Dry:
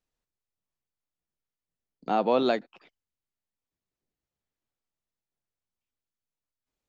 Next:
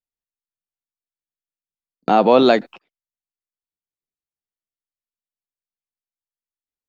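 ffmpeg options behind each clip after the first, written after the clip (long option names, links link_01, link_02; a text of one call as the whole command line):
ffmpeg -i in.wav -filter_complex "[0:a]agate=range=-28dB:threshold=-48dB:ratio=16:detection=peak,asplit=2[link_01][link_02];[link_02]alimiter=limit=-23.5dB:level=0:latency=1,volume=0dB[link_03];[link_01][link_03]amix=inputs=2:normalize=0,volume=8.5dB" out.wav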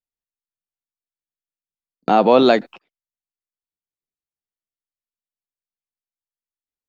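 ffmpeg -i in.wav -af anull out.wav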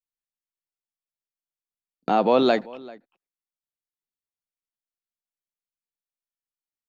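ffmpeg -i in.wav -filter_complex "[0:a]asplit=2[link_01][link_02];[link_02]adelay=390.7,volume=-21dB,highshelf=frequency=4000:gain=-8.79[link_03];[link_01][link_03]amix=inputs=2:normalize=0,volume=-6dB" out.wav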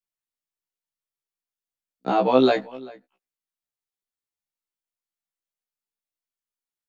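ffmpeg -i in.wav -af "afftfilt=real='re*1.73*eq(mod(b,3),0)':imag='im*1.73*eq(mod(b,3),0)':win_size=2048:overlap=0.75,volume=2dB" out.wav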